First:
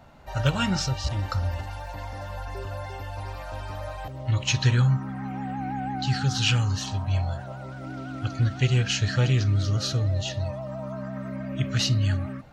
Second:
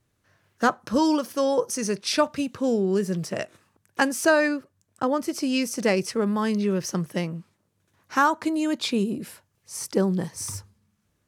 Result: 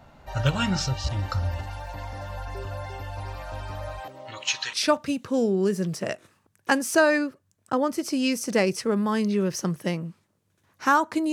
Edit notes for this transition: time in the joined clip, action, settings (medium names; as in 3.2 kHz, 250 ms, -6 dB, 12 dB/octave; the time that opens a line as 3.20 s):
first
3.99–4.73 s: high-pass 230 Hz -> 1.2 kHz
4.73 s: go over to second from 2.03 s